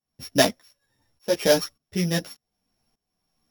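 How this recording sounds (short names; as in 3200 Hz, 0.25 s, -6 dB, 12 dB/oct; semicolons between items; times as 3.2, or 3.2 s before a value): a buzz of ramps at a fixed pitch in blocks of 8 samples; tremolo saw up 1.7 Hz, depth 90%; a shimmering, thickened sound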